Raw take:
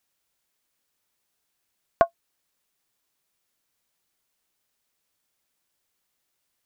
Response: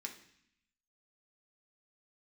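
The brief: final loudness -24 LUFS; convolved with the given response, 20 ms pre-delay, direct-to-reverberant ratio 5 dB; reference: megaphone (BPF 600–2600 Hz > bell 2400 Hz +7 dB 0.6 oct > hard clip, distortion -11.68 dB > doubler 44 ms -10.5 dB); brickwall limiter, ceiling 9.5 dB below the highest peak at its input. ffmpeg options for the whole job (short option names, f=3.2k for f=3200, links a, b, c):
-filter_complex "[0:a]alimiter=limit=-13dB:level=0:latency=1,asplit=2[a][b];[1:a]atrim=start_sample=2205,adelay=20[c];[b][c]afir=irnorm=-1:irlink=0,volume=-2.5dB[d];[a][d]amix=inputs=2:normalize=0,highpass=600,lowpass=2.6k,equalizer=f=2.4k:t=o:w=0.6:g=7,asoftclip=type=hard:threshold=-22.5dB,asplit=2[e][f];[f]adelay=44,volume=-10.5dB[g];[e][g]amix=inputs=2:normalize=0,volume=14.5dB"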